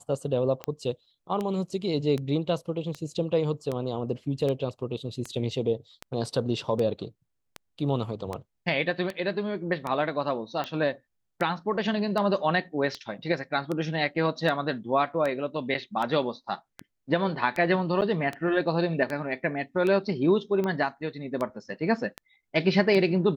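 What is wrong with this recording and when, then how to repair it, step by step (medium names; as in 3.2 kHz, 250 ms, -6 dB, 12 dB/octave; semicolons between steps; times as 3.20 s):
tick 78 rpm -18 dBFS
18.01–18.02 s: dropout 9 ms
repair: de-click; interpolate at 18.01 s, 9 ms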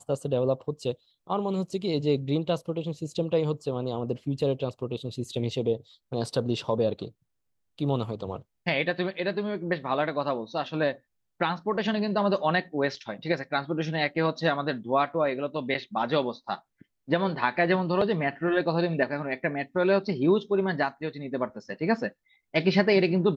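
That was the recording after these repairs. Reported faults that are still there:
nothing left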